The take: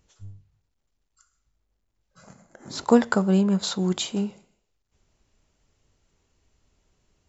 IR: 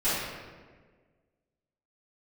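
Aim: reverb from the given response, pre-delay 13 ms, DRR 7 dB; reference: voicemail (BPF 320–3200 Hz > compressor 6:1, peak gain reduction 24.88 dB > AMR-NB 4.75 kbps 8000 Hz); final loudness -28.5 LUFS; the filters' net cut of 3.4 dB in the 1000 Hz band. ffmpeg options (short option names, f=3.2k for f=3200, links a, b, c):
-filter_complex "[0:a]equalizer=f=1k:t=o:g=-4.5,asplit=2[a][b];[1:a]atrim=start_sample=2205,adelay=13[c];[b][c]afir=irnorm=-1:irlink=0,volume=-19.5dB[d];[a][d]amix=inputs=2:normalize=0,highpass=320,lowpass=3.2k,acompressor=threshold=-41dB:ratio=6,volume=19dB" -ar 8000 -c:a libopencore_amrnb -b:a 4750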